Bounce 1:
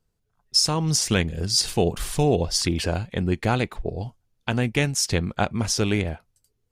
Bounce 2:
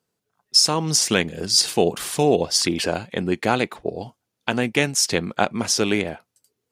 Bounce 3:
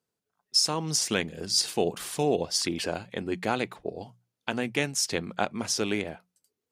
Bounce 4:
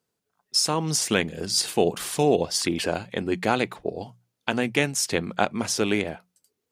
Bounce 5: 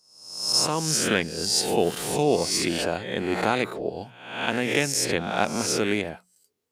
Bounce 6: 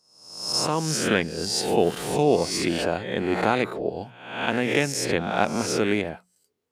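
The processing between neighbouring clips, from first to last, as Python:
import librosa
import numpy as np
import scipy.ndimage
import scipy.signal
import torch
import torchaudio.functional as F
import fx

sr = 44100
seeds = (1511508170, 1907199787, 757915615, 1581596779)

y1 = scipy.signal.sosfilt(scipy.signal.butter(2, 220.0, 'highpass', fs=sr, output='sos'), x)
y1 = y1 * librosa.db_to_amplitude(4.0)
y2 = fx.hum_notches(y1, sr, base_hz=60, count=3)
y2 = y2 * librosa.db_to_amplitude(-7.5)
y3 = fx.dynamic_eq(y2, sr, hz=5300.0, q=1.5, threshold_db=-38.0, ratio=4.0, max_db=-5)
y3 = y3 * librosa.db_to_amplitude(5.0)
y4 = fx.spec_swells(y3, sr, rise_s=0.75)
y4 = y4 * librosa.db_to_amplitude(-2.5)
y5 = fx.high_shelf(y4, sr, hz=3600.0, db=-7.5)
y5 = y5 * librosa.db_to_amplitude(2.0)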